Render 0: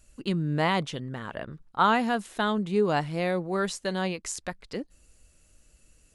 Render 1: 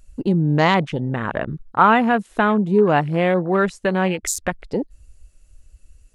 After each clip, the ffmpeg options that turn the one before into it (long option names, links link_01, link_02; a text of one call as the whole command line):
ffmpeg -i in.wav -filter_complex "[0:a]asplit=2[link_01][link_02];[link_02]acompressor=threshold=-34dB:ratio=10,volume=3dB[link_03];[link_01][link_03]amix=inputs=2:normalize=0,afwtdn=0.02,volume=6.5dB" out.wav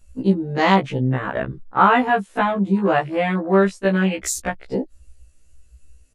ffmpeg -i in.wav -af "aresample=32000,aresample=44100,afftfilt=real='re*1.73*eq(mod(b,3),0)':imag='im*1.73*eq(mod(b,3),0)':win_size=2048:overlap=0.75,volume=2dB" out.wav